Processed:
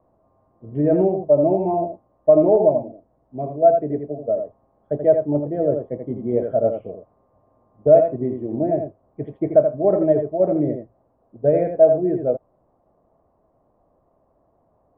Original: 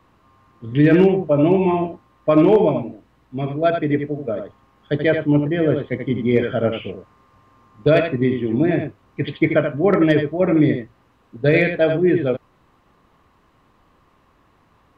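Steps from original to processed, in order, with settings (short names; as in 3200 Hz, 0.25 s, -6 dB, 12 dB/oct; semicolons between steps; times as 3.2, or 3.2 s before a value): synth low-pass 650 Hz, resonance Q 4.9; gain -8 dB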